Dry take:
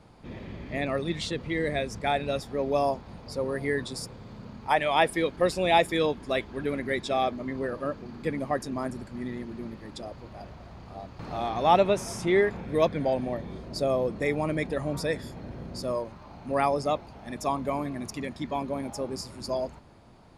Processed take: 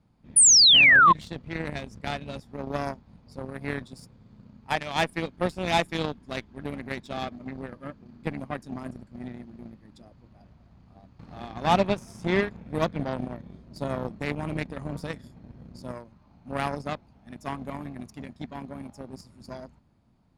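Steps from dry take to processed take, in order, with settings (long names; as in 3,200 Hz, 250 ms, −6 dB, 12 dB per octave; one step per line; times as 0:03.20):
low shelf with overshoot 310 Hz +6.5 dB, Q 1.5
harmonic generator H 3 −22 dB, 5 −29 dB, 7 −19 dB, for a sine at −7.5 dBFS
sound drawn into the spectrogram fall, 0:00.36–0:01.13, 990–10,000 Hz −15 dBFS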